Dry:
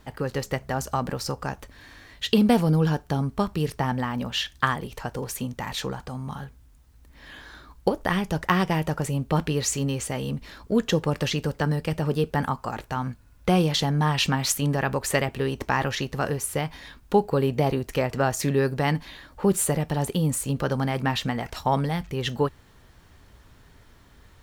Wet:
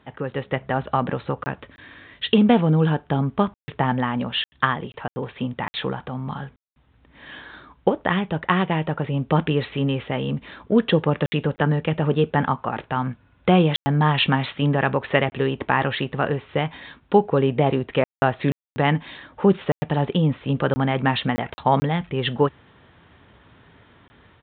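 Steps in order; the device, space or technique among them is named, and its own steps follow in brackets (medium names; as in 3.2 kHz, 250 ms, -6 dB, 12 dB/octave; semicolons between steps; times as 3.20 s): call with lost packets (high-pass 110 Hz 12 dB/octave; resampled via 8 kHz; level rider gain up to 5 dB; lost packets bursts); 1.38–2.25 s: peaking EQ 810 Hz -6 dB 0.37 oct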